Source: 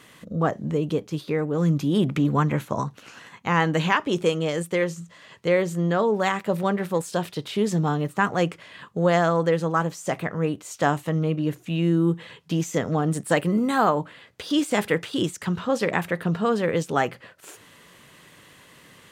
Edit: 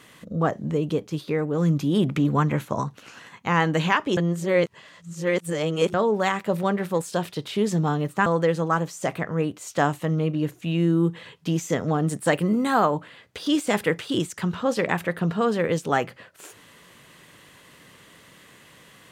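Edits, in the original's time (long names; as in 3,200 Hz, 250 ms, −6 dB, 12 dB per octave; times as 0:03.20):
0:04.17–0:05.94: reverse
0:08.26–0:09.30: remove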